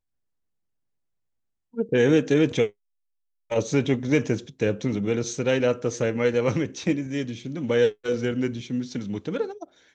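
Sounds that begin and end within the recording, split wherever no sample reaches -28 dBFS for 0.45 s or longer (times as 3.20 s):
1.78–2.67 s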